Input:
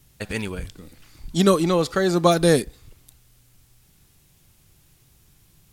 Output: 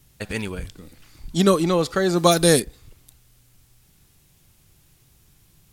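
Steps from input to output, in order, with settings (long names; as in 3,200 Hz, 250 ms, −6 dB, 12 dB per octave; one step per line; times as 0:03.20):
0:02.18–0:02.60: high-shelf EQ 3,600 Hz +9.5 dB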